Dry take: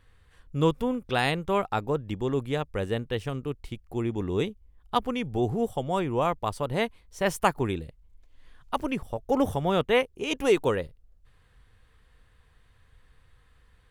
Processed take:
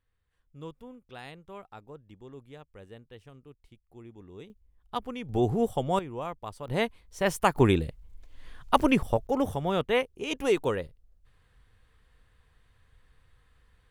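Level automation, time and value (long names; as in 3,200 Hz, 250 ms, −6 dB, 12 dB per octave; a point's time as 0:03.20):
−19 dB
from 0:04.50 −7.5 dB
from 0:05.29 +1 dB
from 0:05.99 −10 dB
from 0:06.68 −0.5 dB
from 0:07.56 +7 dB
from 0:09.27 −3 dB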